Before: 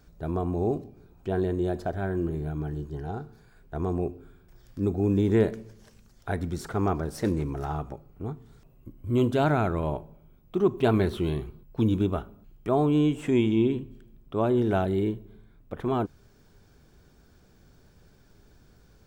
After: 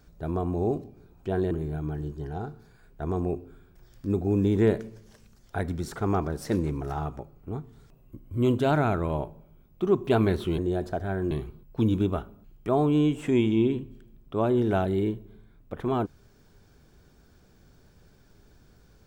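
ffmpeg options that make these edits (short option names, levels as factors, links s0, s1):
-filter_complex "[0:a]asplit=4[s0][s1][s2][s3];[s0]atrim=end=1.512[s4];[s1]atrim=start=2.238:end=11.312[s5];[s2]atrim=start=1.508:end=2.242[s6];[s3]atrim=start=11.308[s7];[s4][s5]acrossfade=d=0.004:c1=hsin:c2=hsin[s8];[s8][s6]acrossfade=d=0.004:c1=hsin:c2=hsin[s9];[s9][s7]acrossfade=d=0.004:c1=hsin:c2=hsin"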